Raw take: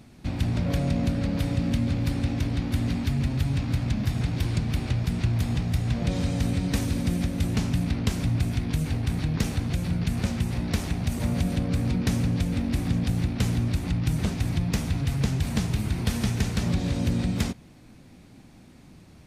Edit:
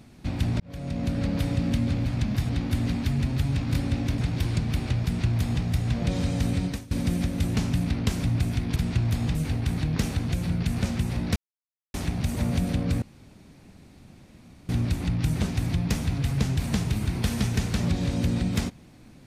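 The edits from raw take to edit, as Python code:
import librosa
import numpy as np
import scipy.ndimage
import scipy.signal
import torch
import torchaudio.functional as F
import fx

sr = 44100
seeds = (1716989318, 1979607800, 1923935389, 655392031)

y = fx.edit(x, sr, fx.fade_in_span(start_s=0.6, length_s=0.62),
    fx.swap(start_s=2.06, length_s=0.44, other_s=3.75, other_length_s=0.43),
    fx.duplicate(start_s=5.04, length_s=0.59, to_s=8.76),
    fx.fade_out_to(start_s=6.65, length_s=0.26, curve='qua', floor_db=-20.0),
    fx.insert_silence(at_s=10.77, length_s=0.58),
    fx.room_tone_fill(start_s=11.85, length_s=1.67), tone=tone)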